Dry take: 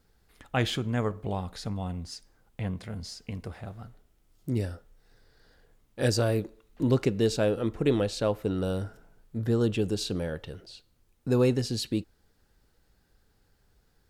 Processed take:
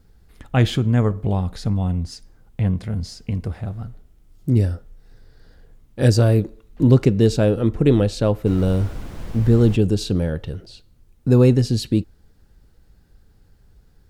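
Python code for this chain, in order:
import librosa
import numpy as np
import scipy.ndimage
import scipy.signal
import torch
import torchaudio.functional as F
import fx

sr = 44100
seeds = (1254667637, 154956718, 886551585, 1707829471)

y = fx.low_shelf(x, sr, hz=290.0, db=11.5)
y = fx.dmg_noise_colour(y, sr, seeds[0], colour='brown', level_db=-32.0, at=(8.45, 9.75), fade=0.02)
y = y * librosa.db_to_amplitude(3.5)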